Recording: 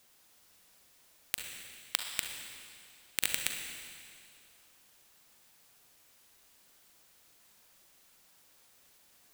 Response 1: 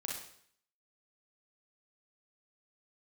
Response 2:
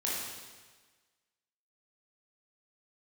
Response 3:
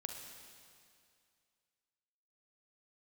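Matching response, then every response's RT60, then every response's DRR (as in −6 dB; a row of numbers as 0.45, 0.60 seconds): 3; 0.60, 1.4, 2.3 seconds; −2.5, −6.5, 3.0 decibels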